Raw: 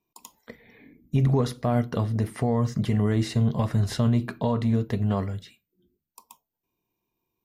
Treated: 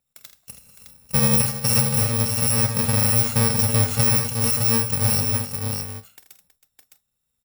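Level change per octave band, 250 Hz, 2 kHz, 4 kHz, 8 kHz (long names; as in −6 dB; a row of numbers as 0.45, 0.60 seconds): −1.5, +10.5, +13.5, +24.0 decibels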